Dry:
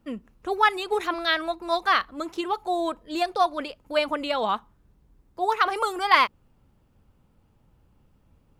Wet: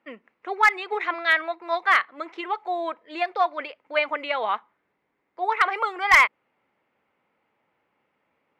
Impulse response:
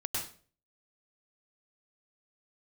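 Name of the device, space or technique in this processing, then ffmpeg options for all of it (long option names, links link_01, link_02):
megaphone: -af "highpass=480,lowpass=2700,equalizer=frequency=2100:width_type=o:width=0.47:gain=12,asoftclip=type=hard:threshold=-9dB"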